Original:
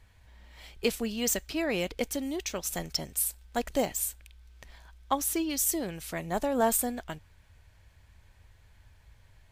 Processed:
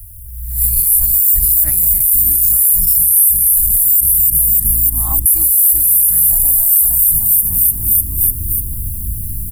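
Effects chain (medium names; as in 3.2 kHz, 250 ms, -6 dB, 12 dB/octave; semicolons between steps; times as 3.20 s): reverse spectral sustain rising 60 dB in 0.38 s; saturation -20.5 dBFS, distortion -16 dB; tone controls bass -10 dB, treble +11 dB; 4.00–5.26 s: low-pass that closes with the level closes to 810 Hz, closed at -23.5 dBFS; added noise white -71 dBFS; inverse Chebyshev band-stop 210–6400 Hz, stop band 40 dB; on a send: frequency-shifting echo 298 ms, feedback 56%, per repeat +55 Hz, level -13.5 dB; on the sum: level rider gain up to 12.5 dB; loudness maximiser +31.5 dB; trim -1 dB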